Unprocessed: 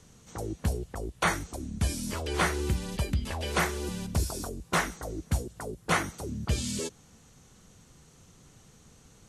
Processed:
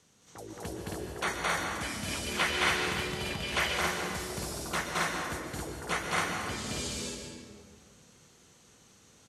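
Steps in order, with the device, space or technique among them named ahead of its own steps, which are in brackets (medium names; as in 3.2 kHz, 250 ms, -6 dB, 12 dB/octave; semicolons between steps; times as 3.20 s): stadium PA (high-pass 230 Hz 6 dB/octave; peaking EQ 3.2 kHz +3.5 dB 2.1 oct; loudspeakers at several distances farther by 75 m 0 dB, 93 m -1 dB; reverberation RT60 1.9 s, pre-delay 114 ms, DRR 3 dB); 1.81–3.78 s: dynamic bell 2.6 kHz, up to +7 dB, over -39 dBFS, Q 1.1; trim -7.5 dB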